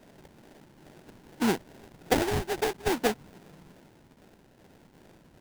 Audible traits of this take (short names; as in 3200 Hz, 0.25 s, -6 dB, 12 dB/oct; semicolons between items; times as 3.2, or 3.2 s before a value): phasing stages 12, 2.4 Hz, lowest notch 600–2300 Hz; aliases and images of a low sample rate 1200 Hz, jitter 20%